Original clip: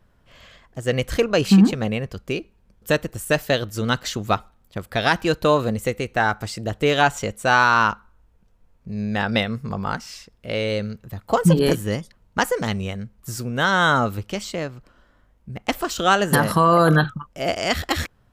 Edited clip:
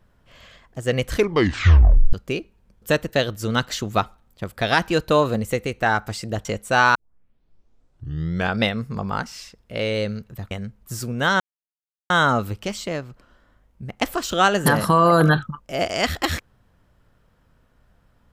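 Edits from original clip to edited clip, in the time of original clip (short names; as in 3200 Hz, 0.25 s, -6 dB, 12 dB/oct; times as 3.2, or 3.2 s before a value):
1.12 tape stop 1.01 s
3.13–3.47 cut
6.79–7.19 cut
7.69 tape start 1.66 s
11.25–12.88 cut
13.77 insert silence 0.70 s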